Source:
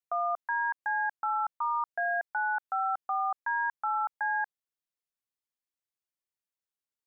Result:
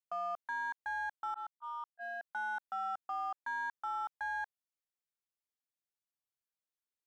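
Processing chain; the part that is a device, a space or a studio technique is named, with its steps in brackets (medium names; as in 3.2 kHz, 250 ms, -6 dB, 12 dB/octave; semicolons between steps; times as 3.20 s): 1.34–2.25 s: gate -28 dBFS, range -35 dB; parallel distortion (in parallel at -8 dB: hard clipper -35.5 dBFS, distortion -7 dB); on the sum: trim -9 dB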